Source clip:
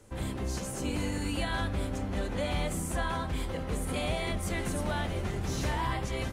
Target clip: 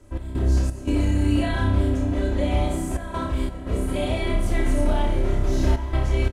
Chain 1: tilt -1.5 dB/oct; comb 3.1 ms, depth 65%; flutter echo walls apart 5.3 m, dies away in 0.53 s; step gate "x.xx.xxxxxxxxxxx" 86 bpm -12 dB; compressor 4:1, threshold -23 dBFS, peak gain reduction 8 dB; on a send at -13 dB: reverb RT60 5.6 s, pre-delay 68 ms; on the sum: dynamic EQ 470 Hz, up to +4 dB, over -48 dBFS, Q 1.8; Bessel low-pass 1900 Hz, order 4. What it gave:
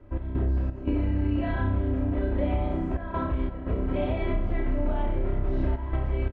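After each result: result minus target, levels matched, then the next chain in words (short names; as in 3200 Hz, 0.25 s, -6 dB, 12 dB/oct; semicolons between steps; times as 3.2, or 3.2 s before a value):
compressor: peak gain reduction +8 dB; 2000 Hz band -2.5 dB
tilt -1.5 dB/oct; comb 3.1 ms, depth 65%; flutter echo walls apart 5.3 m, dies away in 0.53 s; step gate "x.xx.xxxxxxxxxxx" 86 bpm -12 dB; on a send at -13 dB: reverb RT60 5.6 s, pre-delay 68 ms; on the sum: dynamic EQ 470 Hz, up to +4 dB, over -48 dBFS, Q 1.8; Bessel low-pass 1900 Hz, order 4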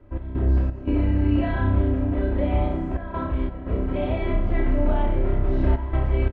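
2000 Hz band -3.0 dB
tilt -1.5 dB/oct; comb 3.1 ms, depth 65%; flutter echo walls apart 5.3 m, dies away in 0.53 s; step gate "x.xx.xxxxxxxxxxx" 86 bpm -12 dB; on a send at -13 dB: reverb RT60 5.6 s, pre-delay 68 ms; on the sum: dynamic EQ 470 Hz, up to +4 dB, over -48 dBFS, Q 1.8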